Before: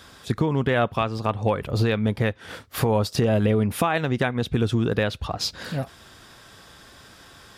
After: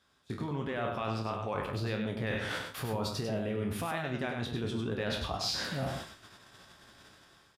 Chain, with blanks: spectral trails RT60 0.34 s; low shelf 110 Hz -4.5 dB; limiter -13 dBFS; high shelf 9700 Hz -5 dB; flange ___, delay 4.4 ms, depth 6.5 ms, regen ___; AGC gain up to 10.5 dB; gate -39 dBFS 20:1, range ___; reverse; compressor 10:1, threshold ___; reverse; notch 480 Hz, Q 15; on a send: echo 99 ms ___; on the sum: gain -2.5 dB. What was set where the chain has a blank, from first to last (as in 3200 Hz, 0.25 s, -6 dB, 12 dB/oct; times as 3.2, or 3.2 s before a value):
1.5 Hz, +82%, -17 dB, -29 dBFS, -5.5 dB